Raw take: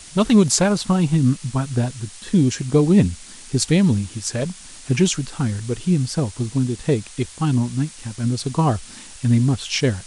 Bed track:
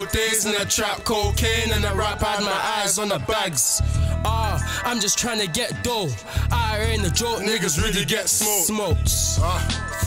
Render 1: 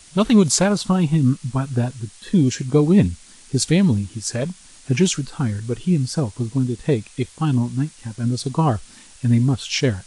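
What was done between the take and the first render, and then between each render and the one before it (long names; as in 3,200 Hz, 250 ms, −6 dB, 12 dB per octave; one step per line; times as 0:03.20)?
noise reduction from a noise print 6 dB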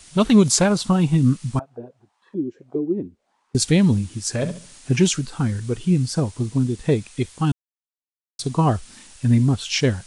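0:01.59–0:03.55: envelope filter 340–1,200 Hz, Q 5.6, down, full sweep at −14 dBFS
0:04.34–0:04.95: flutter between parallel walls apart 11.9 metres, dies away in 0.4 s
0:07.52–0:08.39: silence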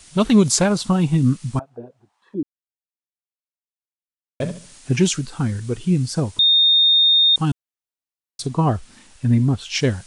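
0:02.43–0:04.40: silence
0:06.39–0:07.36: beep over 3,670 Hz −11 dBFS
0:08.46–0:09.75: high-shelf EQ 3,500 Hz −7.5 dB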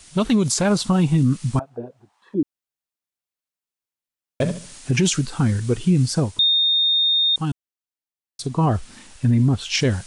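speech leveller within 4 dB 0.5 s
brickwall limiter −10 dBFS, peak gain reduction 8 dB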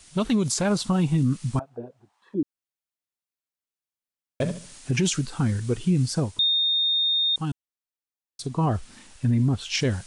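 level −4.5 dB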